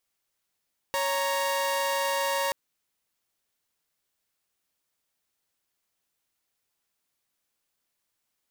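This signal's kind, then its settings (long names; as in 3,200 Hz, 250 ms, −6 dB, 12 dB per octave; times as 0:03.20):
held notes C#5/A#5 saw, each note −25.5 dBFS 1.58 s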